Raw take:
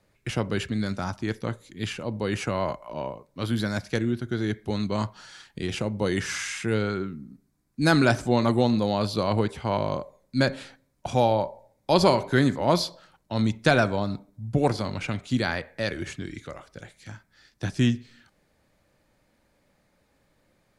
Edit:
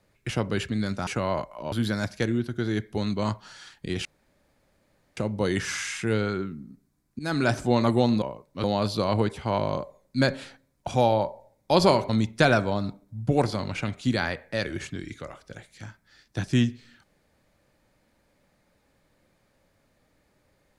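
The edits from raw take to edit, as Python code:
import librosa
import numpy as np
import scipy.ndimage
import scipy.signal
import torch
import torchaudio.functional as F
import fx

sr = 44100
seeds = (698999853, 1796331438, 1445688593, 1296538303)

y = fx.edit(x, sr, fx.cut(start_s=1.07, length_s=1.31),
    fx.move(start_s=3.03, length_s=0.42, to_s=8.83),
    fx.insert_room_tone(at_s=5.78, length_s=1.12),
    fx.fade_in_from(start_s=7.8, length_s=0.42, floor_db=-17.5),
    fx.cut(start_s=12.28, length_s=1.07), tone=tone)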